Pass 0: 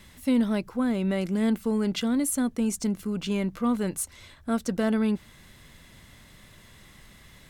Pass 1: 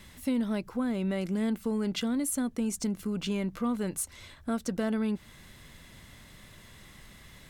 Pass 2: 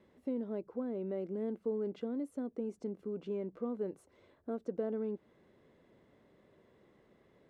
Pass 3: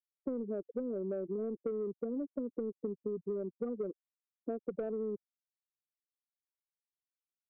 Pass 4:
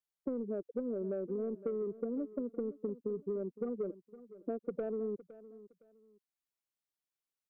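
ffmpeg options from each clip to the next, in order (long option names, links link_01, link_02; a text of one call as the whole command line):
ffmpeg -i in.wav -af "acompressor=threshold=-30dB:ratio=2" out.wav
ffmpeg -i in.wav -af "bandpass=frequency=430:width_type=q:width=2.3:csg=0" out.wav
ffmpeg -i in.wav -filter_complex "[0:a]afftfilt=real='re*gte(hypot(re,im),0.0316)':imag='im*gte(hypot(re,im),0.0316)':win_size=1024:overlap=0.75,asplit=2[link_01][link_02];[link_02]highpass=frequency=720:poles=1,volume=14dB,asoftclip=type=tanh:threshold=-23.5dB[link_03];[link_01][link_03]amix=inputs=2:normalize=0,lowpass=frequency=1900:poles=1,volume=-6dB,acrossover=split=120|3000[link_04][link_05][link_06];[link_05]acompressor=threshold=-41dB:ratio=6[link_07];[link_04][link_07][link_06]amix=inputs=3:normalize=0,volume=6.5dB" out.wav
ffmpeg -i in.wav -af "aecho=1:1:512|1024:0.141|0.0367" out.wav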